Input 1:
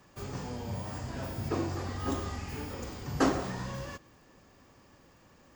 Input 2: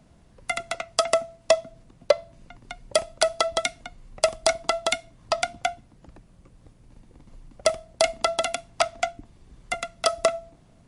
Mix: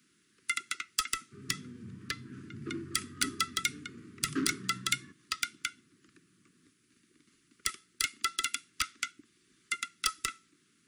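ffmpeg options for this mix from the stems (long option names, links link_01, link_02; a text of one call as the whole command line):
ffmpeg -i stem1.wav -i stem2.wav -filter_complex "[0:a]highpass=frequency=130:width=0.5412,highpass=frequency=130:width=1.3066,adynamicsmooth=sensitivity=1.5:basefreq=1300,adelay=1150,volume=-4.5dB[link_01];[1:a]highpass=410,asoftclip=type=tanh:threshold=-15dB,volume=-2.5dB[link_02];[link_01][link_02]amix=inputs=2:normalize=0,asuperstop=centerf=700:order=8:qfactor=0.76,highshelf=frequency=7900:gain=6" out.wav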